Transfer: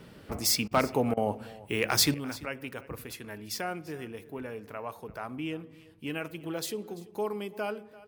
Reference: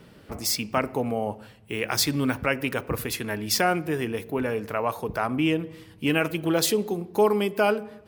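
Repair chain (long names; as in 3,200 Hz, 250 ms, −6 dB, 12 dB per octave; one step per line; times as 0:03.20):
clipped peaks rebuilt −13.5 dBFS
repair the gap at 0:00.68/0:01.14, 30 ms
echo removal 340 ms −20 dB
level 0 dB, from 0:02.14 +12 dB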